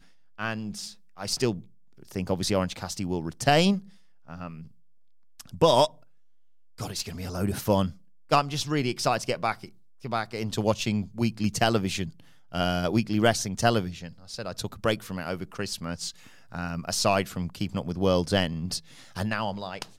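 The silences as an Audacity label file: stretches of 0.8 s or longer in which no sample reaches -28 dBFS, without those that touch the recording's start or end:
4.470000	5.410000	silence
5.860000	6.810000	silence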